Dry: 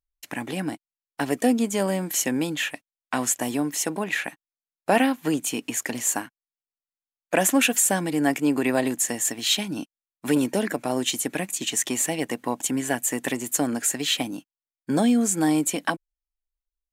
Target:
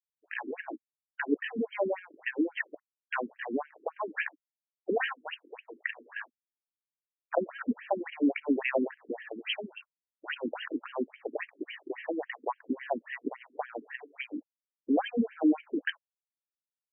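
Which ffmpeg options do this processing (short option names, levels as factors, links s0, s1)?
-af "acrusher=bits=9:mix=0:aa=0.000001,afftfilt=real='re*between(b*sr/1024,300*pow(2300/300,0.5+0.5*sin(2*PI*3.6*pts/sr))/1.41,300*pow(2300/300,0.5+0.5*sin(2*PI*3.6*pts/sr))*1.41)':imag='im*between(b*sr/1024,300*pow(2300/300,0.5+0.5*sin(2*PI*3.6*pts/sr))/1.41,300*pow(2300/300,0.5+0.5*sin(2*PI*3.6*pts/sr))*1.41)':win_size=1024:overlap=0.75"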